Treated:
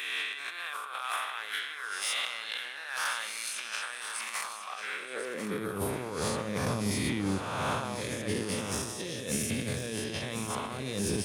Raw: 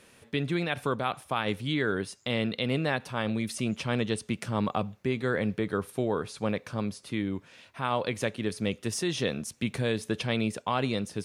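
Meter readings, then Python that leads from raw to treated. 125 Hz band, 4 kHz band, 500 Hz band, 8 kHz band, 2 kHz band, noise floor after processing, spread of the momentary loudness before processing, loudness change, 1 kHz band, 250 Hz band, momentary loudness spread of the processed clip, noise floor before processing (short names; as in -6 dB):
-5.0 dB, +0.5 dB, -6.0 dB, +6.0 dB, 0.0 dB, -41 dBFS, 4 LU, -3.0 dB, -2.5 dB, -5.5 dB, 6 LU, -59 dBFS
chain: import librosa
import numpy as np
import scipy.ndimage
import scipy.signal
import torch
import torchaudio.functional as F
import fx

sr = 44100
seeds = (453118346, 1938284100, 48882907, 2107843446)

y = fx.spec_swells(x, sr, rise_s=1.71)
y = fx.high_shelf(y, sr, hz=6400.0, db=9.0)
y = fx.over_compress(y, sr, threshold_db=-30.0, ratio=-0.5)
y = 10.0 ** (-20.5 / 20.0) * np.tanh(y / 10.0 ** (-20.5 / 20.0))
y = fx.filter_sweep_highpass(y, sr, from_hz=1300.0, to_hz=70.0, start_s=4.91, end_s=5.83, q=1.5)
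y = y + 10.0 ** (-9.5 / 20.0) * np.pad(y, (int(1044 * sr / 1000.0), 0))[:len(y)]
y = fx.rev_schroeder(y, sr, rt60_s=1.8, comb_ms=27, drr_db=13.5)
y = y * librosa.db_to_amplitude(-2.5)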